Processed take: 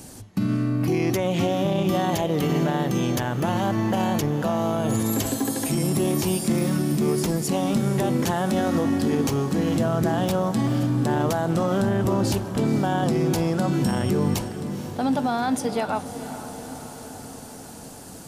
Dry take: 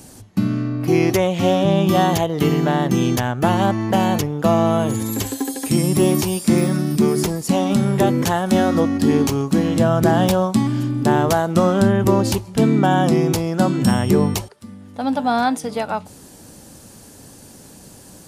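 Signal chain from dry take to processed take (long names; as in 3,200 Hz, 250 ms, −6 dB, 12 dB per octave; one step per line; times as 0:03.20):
brickwall limiter −15 dBFS, peak gain reduction 10 dB
feedback delay with all-pass diffusion 471 ms, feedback 68%, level −12 dB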